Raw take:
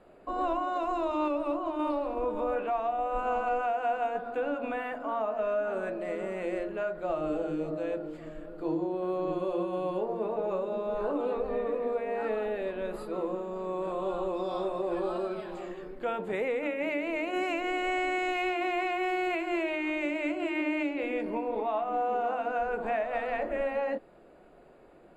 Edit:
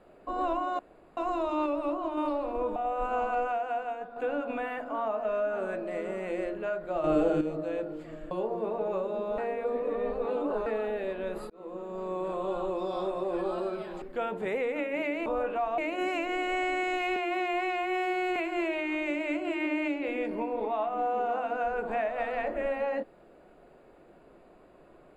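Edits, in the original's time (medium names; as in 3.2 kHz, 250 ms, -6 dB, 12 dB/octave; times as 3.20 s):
0.79 s: insert room tone 0.38 s
2.38–2.90 s: move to 17.13 s
3.54–4.30 s: fade out, to -8.5 dB
7.18–7.55 s: gain +6.5 dB
8.45–9.89 s: delete
10.96–12.24 s: reverse
13.08–13.58 s: fade in
15.60–15.89 s: delete
18.51–19.31 s: stretch 1.5×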